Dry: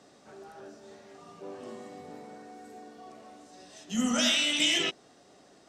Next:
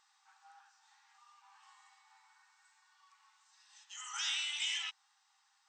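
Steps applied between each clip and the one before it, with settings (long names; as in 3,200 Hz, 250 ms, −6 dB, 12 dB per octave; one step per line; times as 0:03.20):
brick-wall band-pass 770–8,700 Hz
speech leveller
level −8 dB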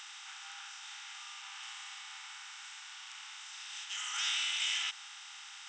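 compressor on every frequency bin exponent 0.4
level −1 dB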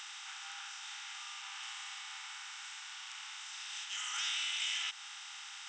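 downward compressor 1.5 to 1, threshold −41 dBFS, peak gain reduction 4.5 dB
level that may rise only so fast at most 140 dB per second
level +1.5 dB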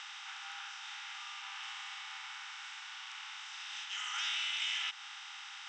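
high-frequency loss of the air 120 metres
level +3 dB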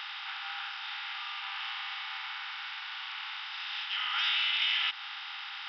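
downsampling to 11,025 Hz
level +7 dB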